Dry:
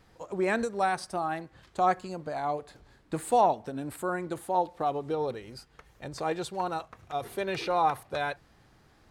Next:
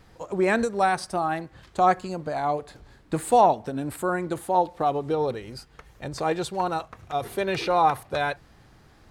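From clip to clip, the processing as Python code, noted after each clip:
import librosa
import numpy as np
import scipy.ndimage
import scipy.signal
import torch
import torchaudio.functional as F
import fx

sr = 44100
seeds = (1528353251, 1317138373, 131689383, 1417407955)

y = fx.low_shelf(x, sr, hz=140.0, db=3.5)
y = y * 10.0 ** (5.0 / 20.0)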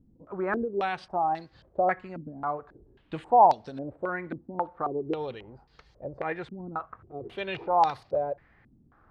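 y = fx.filter_held_lowpass(x, sr, hz=3.7, low_hz=250.0, high_hz=4600.0)
y = y * 10.0 ** (-9.0 / 20.0)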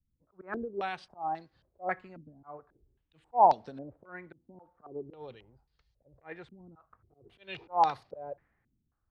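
y = fx.auto_swell(x, sr, attack_ms=130.0)
y = fx.band_widen(y, sr, depth_pct=70)
y = y * 10.0 ** (-8.0 / 20.0)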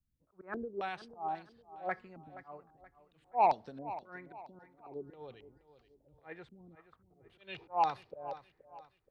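y = 10.0 ** (-14.0 / 20.0) * np.tanh(x / 10.0 ** (-14.0 / 20.0))
y = fx.echo_feedback(y, sr, ms=475, feedback_pct=38, wet_db=-15)
y = y * 10.0 ** (-3.5 / 20.0)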